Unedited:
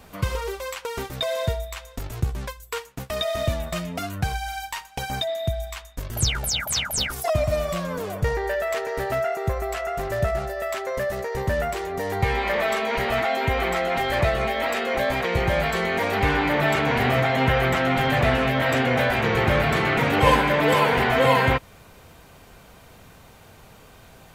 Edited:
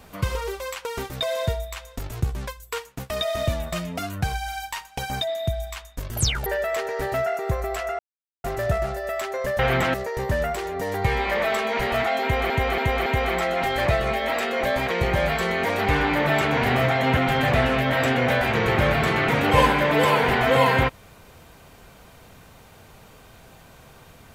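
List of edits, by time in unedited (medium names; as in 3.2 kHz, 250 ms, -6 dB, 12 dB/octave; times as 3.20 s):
6.46–8.44 s: delete
9.97 s: insert silence 0.45 s
13.40–13.68 s: loop, 4 plays
17.51–17.86 s: move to 11.12 s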